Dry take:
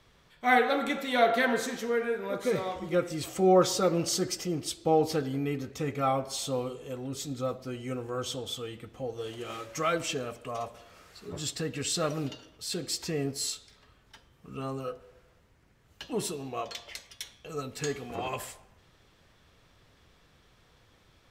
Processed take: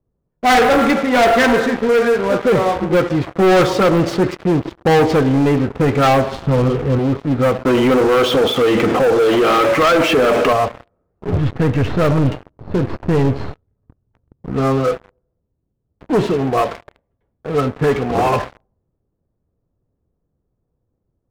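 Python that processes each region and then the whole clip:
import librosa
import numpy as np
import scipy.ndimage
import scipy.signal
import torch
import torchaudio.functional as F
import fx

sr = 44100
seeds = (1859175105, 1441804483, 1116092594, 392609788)

y = fx.chain(x, sr, fx.law_mismatch(coded='A'),
    fx.highpass(hz=43.0, slope=12), at=(0.93, 4.65))
y = fx.chain(y, sr, fx.bass_treble(bass_db=11, treble_db=6),
    fx.transformer_sat(knee_hz=430.0), at=(6.32, 6.99))
y = fx.chain(y, sr, fx.highpass(hz=250.0, slope=12),
    fx.env_flatten(amount_pct=70), at=(7.65, 10.53))
y = fx.chain(y, sr, fx.halfwave_gain(db=-7.0),
    fx.peak_eq(hz=95.0, db=12.0, octaves=1.3), at=(11.27, 14.5))
y = scipy.signal.sosfilt(scipy.signal.butter(2, 1900.0, 'lowpass', fs=sr, output='sos'), y)
y = fx.env_lowpass(y, sr, base_hz=420.0, full_db=-25.0)
y = fx.leveller(y, sr, passes=5)
y = y * librosa.db_to_amplitude(3.0)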